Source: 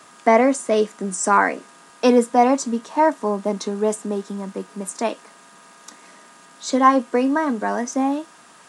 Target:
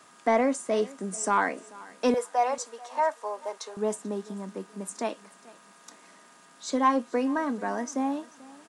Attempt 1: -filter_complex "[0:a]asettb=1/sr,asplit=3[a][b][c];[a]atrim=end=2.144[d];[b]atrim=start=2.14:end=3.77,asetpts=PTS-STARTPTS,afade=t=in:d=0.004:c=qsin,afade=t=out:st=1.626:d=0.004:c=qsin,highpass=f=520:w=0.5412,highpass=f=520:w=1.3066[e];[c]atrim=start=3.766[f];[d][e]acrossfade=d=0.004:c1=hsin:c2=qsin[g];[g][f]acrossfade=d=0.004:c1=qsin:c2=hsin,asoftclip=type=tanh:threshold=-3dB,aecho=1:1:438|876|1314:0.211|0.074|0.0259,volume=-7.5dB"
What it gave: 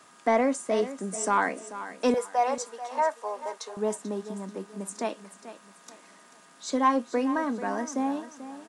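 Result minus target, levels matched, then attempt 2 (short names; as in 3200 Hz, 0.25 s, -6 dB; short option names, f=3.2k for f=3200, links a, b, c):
echo-to-direct +8 dB
-filter_complex "[0:a]asettb=1/sr,asplit=3[a][b][c];[a]atrim=end=2.144[d];[b]atrim=start=2.14:end=3.77,asetpts=PTS-STARTPTS,afade=t=in:d=0.004:c=qsin,afade=t=out:st=1.626:d=0.004:c=qsin,highpass=f=520:w=0.5412,highpass=f=520:w=1.3066[e];[c]atrim=start=3.766[f];[d][e]acrossfade=d=0.004:c1=hsin:c2=qsin[g];[g][f]acrossfade=d=0.004:c1=qsin:c2=hsin,asoftclip=type=tanh:threshold=-3dB,aecho=1:1:438|876|1314:0.0841|0.0294|0.0103,volume=-7.5dB"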